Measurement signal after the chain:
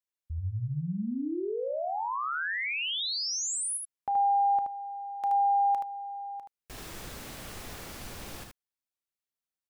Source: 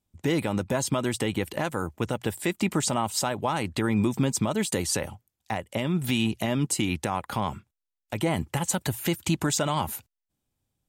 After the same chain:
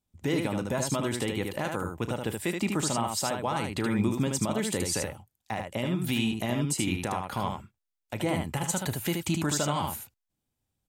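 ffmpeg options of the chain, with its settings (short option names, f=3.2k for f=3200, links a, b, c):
-af "aecho=1:1:34|76:0.168|0.596,volume=-3.5dB"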